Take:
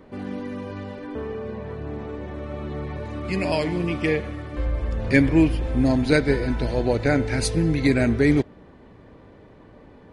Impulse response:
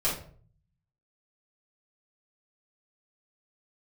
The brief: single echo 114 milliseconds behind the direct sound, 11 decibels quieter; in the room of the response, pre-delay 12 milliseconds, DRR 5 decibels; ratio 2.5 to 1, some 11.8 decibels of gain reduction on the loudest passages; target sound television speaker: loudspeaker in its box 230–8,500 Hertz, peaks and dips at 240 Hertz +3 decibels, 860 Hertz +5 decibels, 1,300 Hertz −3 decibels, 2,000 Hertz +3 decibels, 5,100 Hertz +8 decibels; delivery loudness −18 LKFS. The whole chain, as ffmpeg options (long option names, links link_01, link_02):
-filter_complex "[0:a]acompressor=threshold=-31dB:ratio=2.5,aecho=1:1:114:0.282,asplit=2[link_01][link_02];[1:a]atrim=start_sample=2205,adelay=12[link_03];[link_02][link_03]afir=irnorm=-1:irlink=0,volume=-14dB[link_04];[link_01][link_04]amix=inputs=2:normalize=0,highpass=frequency=230:width=0.5412,highpass=frequency=230:width=1.3066,equalizer=frequency=240:width_type=q:width=4:gain=3,equalizer=frequency=860:width_type=q:width=4:gain=5,equalizer=frequency=1300:width_type=q:width=4:gain=-3,equalizer=frequency=2000:width_type=q:width=4:gain=3,equalizer=frequency=5100:width_type=q:width=4:gain=8,lowpass=frequency=8500:width=0.5412,lowpass=frequency=8500:width=1.3066,volume=13.5dB"